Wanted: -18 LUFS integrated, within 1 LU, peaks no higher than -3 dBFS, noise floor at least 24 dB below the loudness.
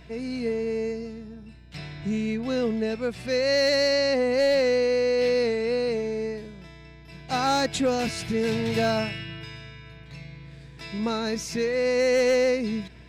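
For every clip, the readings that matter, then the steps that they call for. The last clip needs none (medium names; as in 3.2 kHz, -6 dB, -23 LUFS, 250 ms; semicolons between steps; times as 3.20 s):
clipped samples 0.4%; clipping level -16.0 dBFS; hum 60 Hz; highest harmonic 300 Hz; hum level -47 dBFS; loudness -25.0 LUFS; peak level -16.0 dBFS; loudness target -18.0 LUFS
-> clip repair -16 dBFS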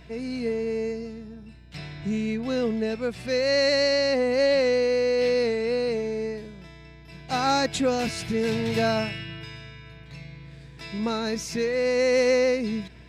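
clipped samples 0.0%; hum 60 Hz; highest harmonic 300 Hz; hum level -47 dBFS
-> de-hum 60 Hz, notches 5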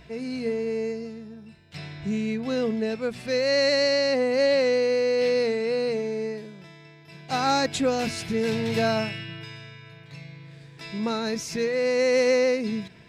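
hum not found; loudness -25.0 LUFS; peak level -11.0 dBFS; loudness target -18.0 LUFS
-> trim +7 dB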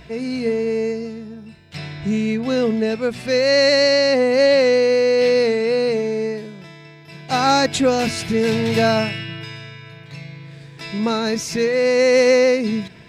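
loudness -17.5 LUFS; peak level -4.0 dBFS; noise floor -42 dBFS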